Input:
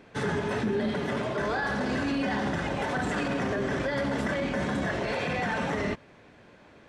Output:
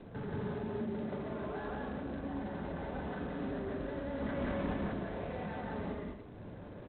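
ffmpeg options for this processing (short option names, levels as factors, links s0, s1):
-filter_complex "[0:a]adynamicequalizer=threshold=0.00282:dfrequency=120:dqfactor=2.2:tfrequency=120:tqfactor=2.2:attack=5:release=100:ratio=0.375:range=4:mode=cutabove:tftype=bell,acompressor=threshold=0.00355:ratio=3,asplit=3[s0][s1][s2];[s0]afade=t=out:st=1.71:d=0.02[s3];[s1]lowpass=2000,afade=t=in:st=1.71:d=0.02,afade=t=out:st=2.37:d=0.02[s4];[s2]afade=t=in:st=2.37:d=0.02[s5];[s3][s4][s5]amix=inputs=3:normalize=0,asplit=2[s6][s7];[s7]adelay=41,volume=0.355[s8];[s6][s8]amix=inputs=2:normalize=0,asplit=3[s9][s10][s11];[s9]afade=t=out:st=4.19:d=0.02[s12];[s10]aeval=exprs='0.0178*(cos(1*acos(clip(val(0)/0.0178,-1,1)))-cos(1*PI/2))+0.00708*(cos(5*acos(clip(val(0)/0.0178,-1,1)))-cos(5*PI/2))':c=same,afade=t=in:st=4.19:d=0.02,afade=t=out:st=4.74:d=0.02[s13];[s11]afade=t=in:st=4.74:d=0.02[s14];[s12][s13][s14]amix=inputs=3:normalize=0,flanger=delay=7.8:depth=6.9:regen=-89:speed=1.5:shape=triangular,lowshelf=f=170:g=8,asoftclip=type=tanh:threshold=0.0133,adynamicsmooth=sensitivity=7:basefreq=930,asplit=3[s15][s16][s17];[s15]afade=t=out:st=0.61:d=0.02[s18];[s16]highpass=f=44:w=0.5412,highpass=f=44:w=1.3066,afade=t=in:st=0.61:d=0.02,afade=t=out:st=1.03:d=0.02[s19];[s17]afade=t=in:st=1.03:d=0.02[s20];[s18][s19][s20]amix=inputs=3:normalize=0,aecho=1:1:177.8|285.7:1|0.355,volume=2.37" -ar 8000 -c:a adpcm_g726 -b:a 24k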